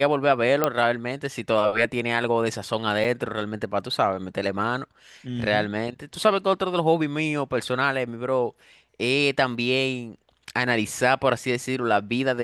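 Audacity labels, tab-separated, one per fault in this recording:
0.640000	0.640000	pop -6 dBFS
3.040000	3.050000	dropout 5.9 ms

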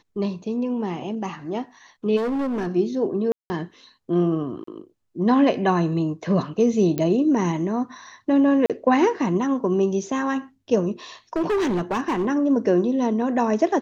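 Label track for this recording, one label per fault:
2.160000	2.680000	clipped -22 dBFS
3.320000	3.500000	dropout 180 ms
4.640000	4.670000	dropout 34 ms
6.980000	6.980000	pop -12 dBFS
8.660000	8.700000	dropout 37 ms
11.360000	12.270000	clipped -19 dBFS

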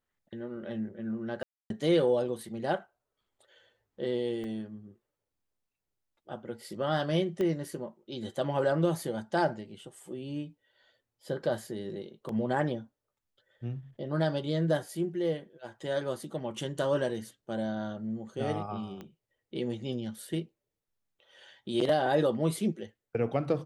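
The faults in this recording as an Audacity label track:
1.430000	1.700000	dropout 272 ms
4.440000	4.440000	dropout 2.3 ms
7.410000	7.410000	pop -21 dBFS
12.290000	12.290000	dropout 2 ms
19.010000	19.010000	pop -29 dBFS

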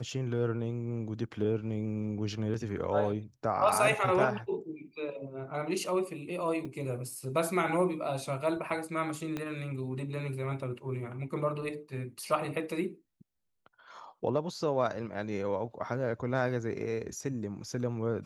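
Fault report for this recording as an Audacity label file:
6.650000	6.650000	dropout 4.2 ms
9.370000	9.370000	pop -21 dBFS

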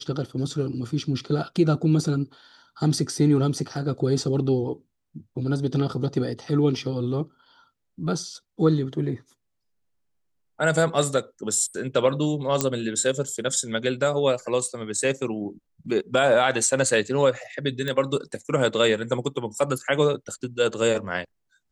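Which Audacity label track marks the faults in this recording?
12.610000	12.610000	pop -5 dBFS
17.880000	17.880000	pop -15 dBFS

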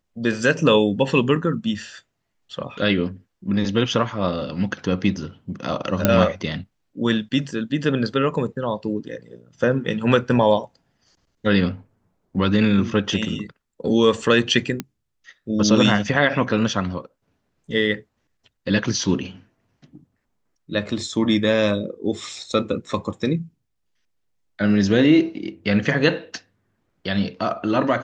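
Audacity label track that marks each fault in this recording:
6.050000	6.050000	pop -1 dBFS
14.800000	14.800000	pop -11 dBFS

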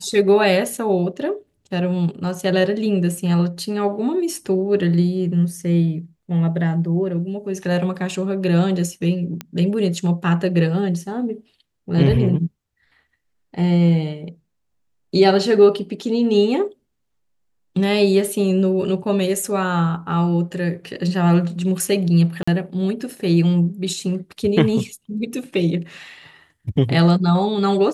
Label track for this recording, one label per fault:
9.410000	9.410000	pop -12 dBFS
22.430000	22.480000	dropout 45 ms

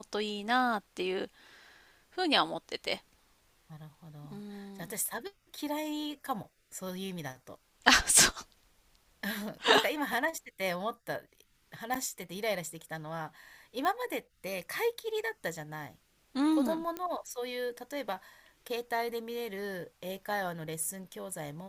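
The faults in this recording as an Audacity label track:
11.940000	11.940000	pop
13.850000	13.850000	pop -20 dBFS
16.970000	16.970000	pop -21 dBFS

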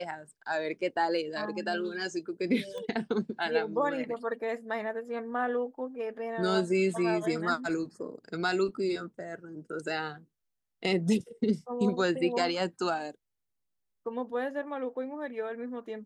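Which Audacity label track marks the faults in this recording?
2.780000	2.780000	pop -28 dBFS

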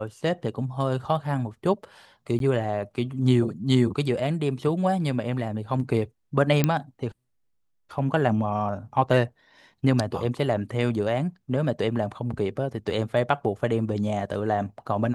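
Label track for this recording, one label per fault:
2.390000	2.400000	dropout 12 ms
6.640000	6.640000	pop -7 dBFS

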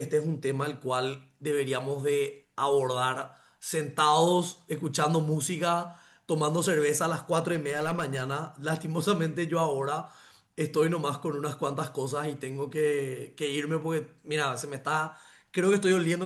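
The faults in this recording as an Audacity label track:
7.530000	8.230000	clipped -24 dBFS

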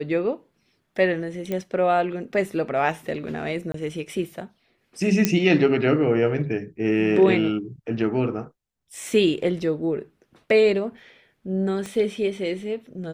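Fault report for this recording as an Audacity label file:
1.520000	1.520000	pop -15 dBFS
3.720000	3.740000	dropout 23 ms
5.250000	5.250000	pop -4 dBFS
11.860000	11.860000	pop -20 dBFS

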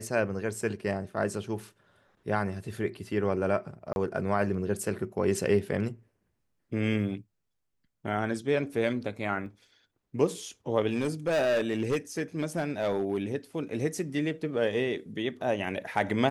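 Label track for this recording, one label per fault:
3.930000	3.960000	dropout 31 ms
9.460000	9.460000	dropout 3.1 ms
10.880000	13.180000	clipped -22.5 dBFS

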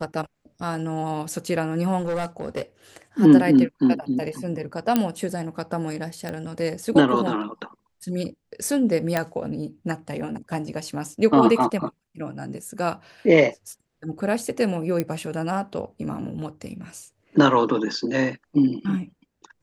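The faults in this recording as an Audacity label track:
1.990000	2.620000	clipped -22 dBFS
4.960000	4.960000	pop -6 dBFS
6.290000	6.290000	pop -17 dBFS
9.170000	9.170000	pop -8 dBFS
15.000000	15.000000	pop -11 dBFS

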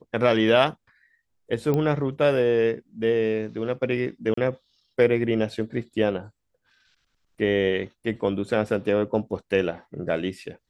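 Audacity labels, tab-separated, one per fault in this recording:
1.740000	1.740000	pop -14 dBFS
4.340000	4.370000	dropout 34 ms

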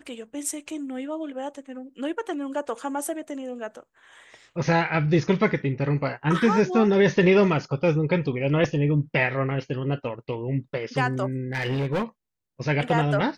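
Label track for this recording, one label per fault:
11.530000	12.040000	clipped -21.5 dBFS

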